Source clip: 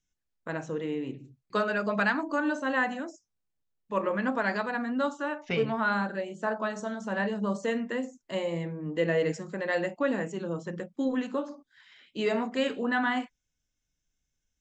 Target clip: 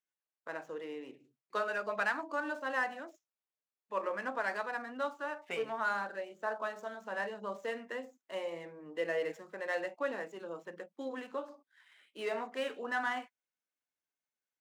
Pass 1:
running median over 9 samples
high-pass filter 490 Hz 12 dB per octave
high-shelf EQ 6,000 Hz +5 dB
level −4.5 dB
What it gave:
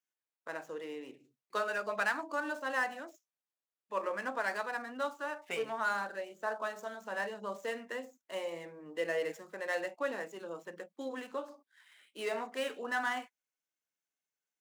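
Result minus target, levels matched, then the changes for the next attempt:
8,000 Hz band +6.0 dB
change: high-shelf EQ 6,000 Hz −5.5 dB

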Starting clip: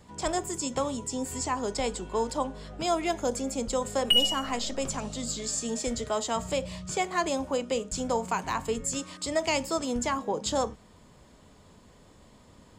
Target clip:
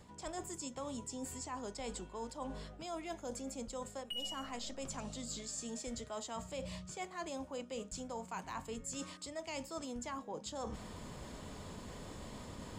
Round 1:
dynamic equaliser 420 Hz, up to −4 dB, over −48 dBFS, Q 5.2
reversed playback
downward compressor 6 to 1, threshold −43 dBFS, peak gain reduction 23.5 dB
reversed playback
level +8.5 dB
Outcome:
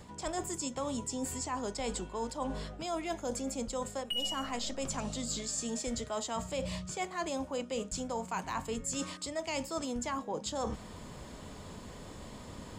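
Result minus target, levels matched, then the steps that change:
downward compressor: peak gain reduction −7 dB
change: downward compressor 6 to 1, threshold −51.5 dBFS, peak gain reduction 30.5 dB

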